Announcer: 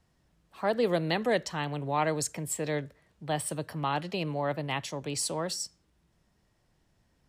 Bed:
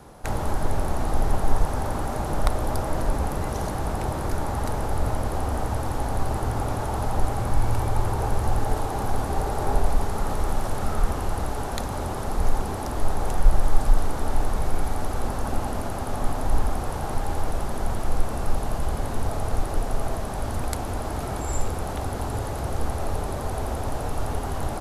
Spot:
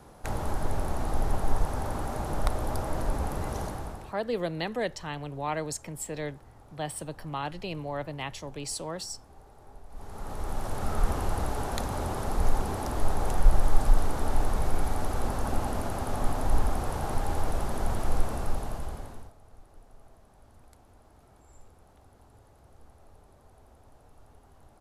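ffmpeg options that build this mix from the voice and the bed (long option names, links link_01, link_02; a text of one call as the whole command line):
ffmpeg -i stem1.wav -i stem2.wav -filter_complex "[0:a]adelay=3500,volume=-3.5dB[link_01];[1:a]volume=20dB,afade=type=out:start_time=3.57:duration=0.58:silence=0.0749894,afade=type=in:start_time=9.89:duration=1.23:silence=0.0562341,afade=type=out:start_time=18.17:duration=1.16:silence=0.0501187[link_02];[link_01][link_02]amix=inputs=2:normalize=0" out.wav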